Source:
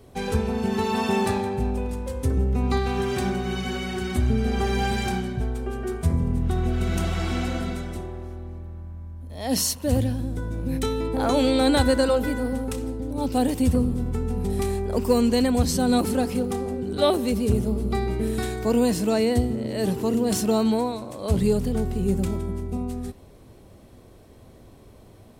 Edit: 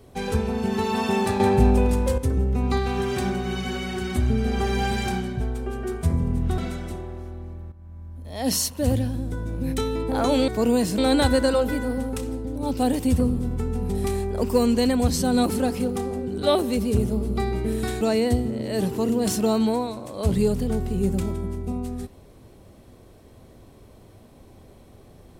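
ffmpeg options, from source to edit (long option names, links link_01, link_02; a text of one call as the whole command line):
ffmpeg -i in.wav -filter_complex "[0:a]asplit=8[link_01][link_02][link_03][link_04][link_05][link_06][link_07][link_08];[link_01]atrim=end=1.402[link_09];[link_02]atrim=start=1.398:end=2.182,asetpts=PTS-STARTPTS,volume=8.5dB[link_10];[link_03]atrim=start=2.178:end=6.582[link_11];[link_04]atrim=start=7.628:end=8.77,asetpts=PTS-STARTPTS,afade=type=out:start_time=1.138:duration=0.004:curve=hsin:silence=0.211349[link_12];[link_05]atrim=start=8.77:end=11.532,asetpts=PTS-STARTPTS,afade=type=in:duration=0.52:curve=qsin:silence=0.211349[link_13];[link_06]atrim=start=18.558:end=19.062[link_14];[link_07]atrim=start=11.528:end=18.562[link_15];[link_08]atrim=start=19.058[link_16];[link_09][link_10]acrossfade=duration=0.004:curve1=hsin:curve2=hsin[link_17];[link_17][link_11]acrossfade=duration=0.004:curve1=hsin:curve2=hsin[link_18];[link_12][link_13]concat=n=2:v=0:a=1[link_19];[link_18][link_19]acrossfade=duration=0.004:curve1=hsin:curve2=hsin[link_20];[link_20][link_14]acrossfade=duration=0.004:curve1=hsin:curve2=hsin[link_21];[link_21][link_15]acrossfade=duration=0.004:curve1=hsin:curve2=hsin[link_22];[link_22][link_16]acrossfade=duration=0.004:curve1=hsin:curve2=hsin" out.wav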